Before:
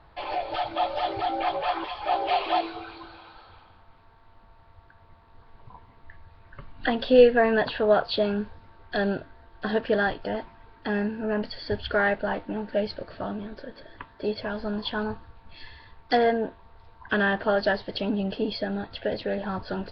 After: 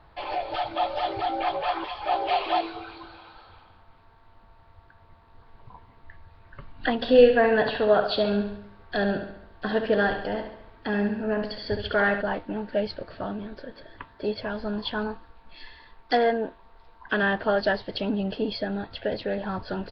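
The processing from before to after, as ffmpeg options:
-filter_complex "[0:a]asplit=3[s0][s1][s2];[s0]afade=t=out:st=7.01:d=0.02[s3];[s1]aecho=1:1:69|138|207|276|345|414:0.398|0.207|0.108|0.056|0.0291|0.0151,afade=t=in:st=7.01:d=0.02,afade=t=out:st=12.21:d=0.02[s4];[s2]afade=t=in:st=12.21:d=0.02[s5];[s3][s4][s5]amix=inputs=3:normalize=0,asettb=1/sr,asplit=3[s6][s7][s8];[s6]atrim=end=15.074[s9];[s7]atrim=start=15.07:end=17.23,asetpts=PTS-STARTPTS,afade=t=in:d=0.004:c=qsin,afade=t=out:st=2.156:d=0.004:c=qsin,equalizer=f=94:w=1.5:g=-14.5[s10];[s8]atrim=start=17.226[s11];[s9][s10]acrossfade=d=0.004:c1=hsin:c2=qsin[s12];[s12][s11]acrossfade=d=0.004:c1=qsin:c2=hsin"

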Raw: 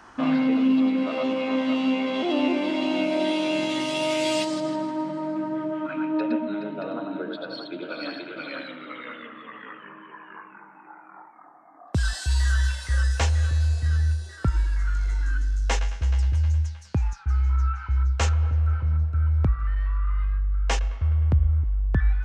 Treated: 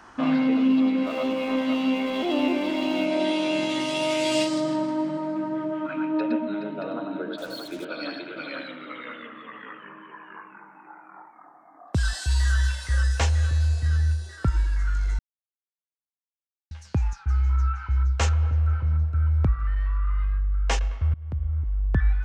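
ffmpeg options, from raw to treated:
-filter_complex "[0:a]asettb=1/sr,asplit=3[s0][s1][s2];[s0]atrim=end=1.044[s3];[s1]atrim=start=1.04:end=3.06,asetpts=PTS-STARTPTS,afade=t=in:d=0.004:c=qsin,afade=t=out:st=2.016:d=0.004:c=qsin,aeval=exprs='sgn(val(0))*max(abs(val(0))-0.00473,0)':c=same[s4];[s2]atrim=start=3.056[s5];[s3][s4]acrossfade=d=0.004:c1=hsin:c2=qsin[s6];[s6][s5]acrossfade=d=0.004:c1=qsin:c2=hsin,asettb=1/sr,asplit=3[s7][s8][s9];[s7]atrim=end=4.284[s10];[s8]atrim=start=4.28:end=5.17,asetpts=PTS-STARTPTS,afade=t=in:d=0.004:c=qsin,afade=t=out:st=0.886:d=0.004:c=qsin,asplit=2[s11][s12];[s12]adelay=39,volume=0.531[s13];[s11][s13]amix=inputs=2:normalize=0,atrim=end_sample=39249[s14];[s9]atrim=start=5.166[s15];[s10][s14]acrossfade=d=0.004:c1=hsin:c2=qsin[s16];[s16][s15]acrossfade=d=0.004:c1=qsin:c2=hsin,asettb=1/sr,asplit=3[s17][s18][s19];[s17]atrim=end=7.384[s20];[s18]atrim=start=7.38:end=7.85,asetpts=PTS-STARTPTS,afade=t=in:d=0.004:c=qsin,afade=t=out:st=0.466:d=0.004:c=qsin,acrusher=bits=6:mix=0:aa=0.5[s21];[s19]atrim=start=7.846[s22];[s20][s21]acrossfade=d=0.004:c1=hsin:c2=qsin[s23];[s23][s22]acrossfade=d=0.004:c1=qsin:c2=hsin,asplit=4[s24][s25][s26][s27];[s24]atrim=end=15.19,asetpts=PTS-STARTPTS,afade=t=out:st=15.186:d=0.004:c=hsin[s28];[s25]atrim=start=15.19:end=16.71,asetpts=PTS-STARTPTS,volume=0[s29];[s26]atrim=start=16.71:end=21.14,asetpts=PTS-STARTPTS,afade=t=in:d=0.004:c=hsin,afade=t=out:st=4.426:d=0.004:c=hsin:silence=0.0630957[s30];[s27]atrim=start=21.14,asetpts=PTS-STARTPTS,afade=t=in:d=0.71:silence=0.0630957[s31];[s28][s29][s30][s31]concat=n=4:v=0:a=1"

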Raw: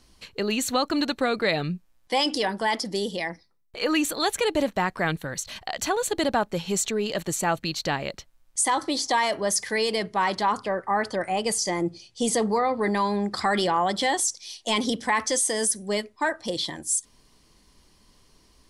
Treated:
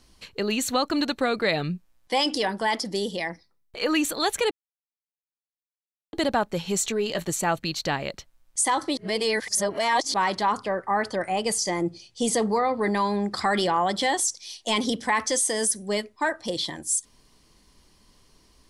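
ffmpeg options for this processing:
-filter_complex "[0:a]asettb=1/sr,asplit=3[s0][s1][s2];[s0]atrim=end=6.804[s3];[s1]atrim=start=6.8:end=7.3,asetpts=PTS-STARTPTS,afade=t=in:d=0.004:c=qsin,afade=t=out:st=0.496:d=0.004:c=qsin,asplit=2[s4][s5];[s5]adelay=17,volume=0.282[s6];[s4][s6]amix=inputs=2:normalize=0,atrim=end_sample=22050[s7];[s2]atrim=start=7.296[s8];[s3][s7]acrossfade=d=0.004:c1=hsin:c2=qsin[s9];[s9][s8]acrossfade=d=0.004:c1=qsin:c2=hsin,asplit=5[s10][s11][s12][s13][s14];[s10]atrim=end=4.51,asetpts=PTS-STARTPTS,afade=t=out:st=4.506:d=0.004:c=hsin[s15];[s11]atrim=start=4.51:end=6.13,asetpts=PTS-STARTPTS,volume=0[s16];[s12]atrim=start=6.13:end=8.972,asetpts=PTS-STARTPTS,afade=t=in:d=0.004:c=hsin[s17];[s13]atrim=start=8.968:end=10.142,asetpts=PTS-STARTPTS,areverse[s18];[s14]atrim=start=10.138[s19];[s15][s16][s17]concat=n=3:v=0:a=1[s20];[s20][s18]acrossfade=d=0.004:c1=hsin:c2=hsin[s21];[s21][s19]acrossfade=d=0.004:c1=hsin:c2=hsin"

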